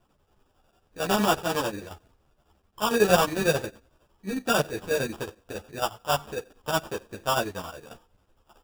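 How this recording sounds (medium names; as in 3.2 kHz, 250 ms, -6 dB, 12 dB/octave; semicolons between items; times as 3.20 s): aliases and images of a low sample rate 2.1 kHz, jitter 0%; chopped level 11 Hz, depth 60%, duty 65%; a quantiser's noise floor 12-bit, dither none; a shimmering, thickened sound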